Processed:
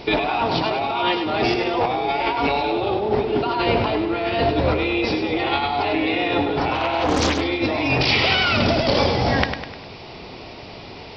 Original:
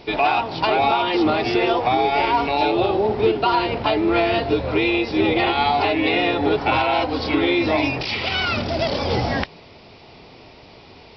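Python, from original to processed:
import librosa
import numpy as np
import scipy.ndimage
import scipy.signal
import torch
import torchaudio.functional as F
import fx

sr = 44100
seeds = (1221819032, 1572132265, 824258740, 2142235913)

y = fx.over_compress(x, sr, threshold_db=-24.0, ratio=-1.0)
y = fx.echo_feedback(y, sr, ms=101, feedback_pct=48, wet_db=-8)
y = fx.doppler_dist(y, sr, depth_ms=0.64, at=(6.75, 7.41))
y = y * 10.0 ** (2.5 / 20.0)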